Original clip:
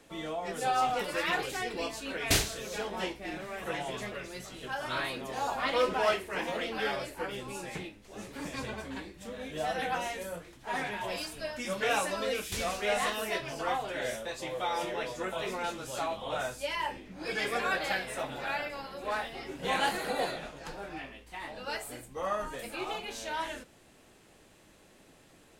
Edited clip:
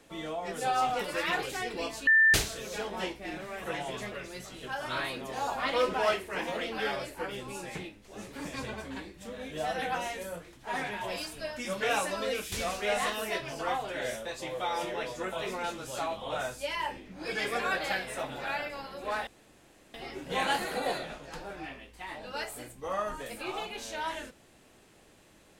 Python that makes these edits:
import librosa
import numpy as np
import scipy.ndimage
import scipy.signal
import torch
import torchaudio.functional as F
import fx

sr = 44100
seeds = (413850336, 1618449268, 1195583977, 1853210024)

y = fx.edit(x, sr, fx.bleep(start_s=2.07, length_s=0.27, hz=1780.0, db=-17.5),
    fx.insert_room_tone(at_s=19.27, length_s=0.67), tone=tone)